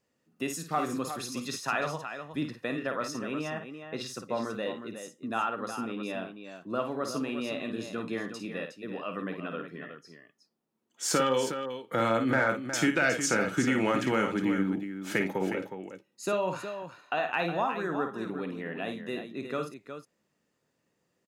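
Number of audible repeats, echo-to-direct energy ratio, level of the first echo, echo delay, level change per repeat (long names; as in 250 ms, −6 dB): 2, −5.0 dB, −7.5 dB, 53 ms, repeats not evenly spaced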